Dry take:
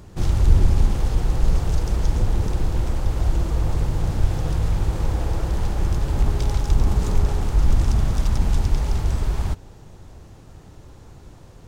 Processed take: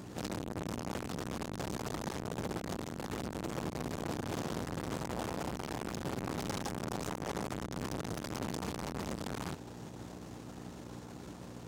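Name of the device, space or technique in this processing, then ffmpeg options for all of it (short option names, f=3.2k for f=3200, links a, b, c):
valve amplifier with mains hum: -af "aeval=exprs='(tanh(44.7*val(0)+0.65)-tanh(0.65))/44.7':c=same,aeval=exprs='val(0)+0.00631*(sin(2*PI*60*n/s)+sin(2*PI*2*60*n/s)/2+sin(2*PI*3*60*n/s)/3+sin(2*PI*4*60*n/s)/4+sin(2*PI*5*60*n/s)/5)':c=same,highpass=180,volume=4dB"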